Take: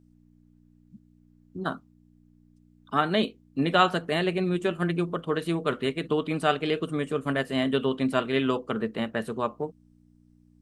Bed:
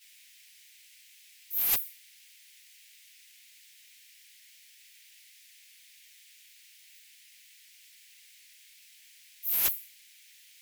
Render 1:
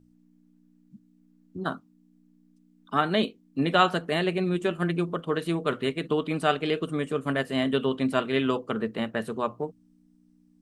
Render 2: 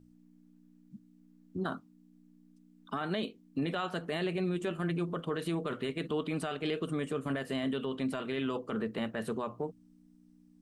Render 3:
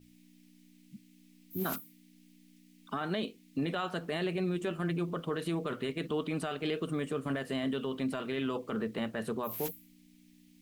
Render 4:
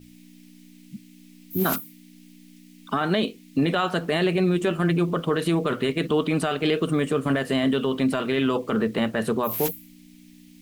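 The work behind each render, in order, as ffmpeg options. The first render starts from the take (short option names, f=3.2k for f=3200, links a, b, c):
-af "bandreject=f=60:t=h:w=4,bandreject=f=120:t=h:w=4"
-af "acompressor=threshold=-26dB:ratio=10,alimiter=level_in=0.5dB:limit=-24dB:level=0:latency=1:release=13,volume=-0.5dB"
-filter_complex "[1:a]volume=-14dB[a];[0:a][a]amix=inputs=2:normalize=0"
-af "volume=11dB"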